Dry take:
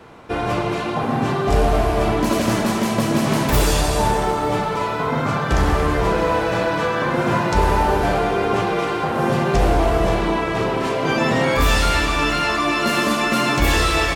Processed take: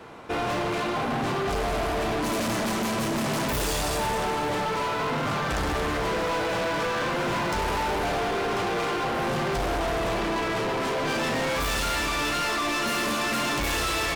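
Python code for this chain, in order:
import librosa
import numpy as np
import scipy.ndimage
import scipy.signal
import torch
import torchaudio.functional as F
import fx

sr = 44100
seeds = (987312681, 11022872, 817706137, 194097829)

y = fx.low_shelf(x, sr, hz=170.0, db=-6.0)
y = np.clip(10.0 ** (25.0 / 20.0) * y, -1.0, 1.0) / 10.0 ** (25.0 / 20.0)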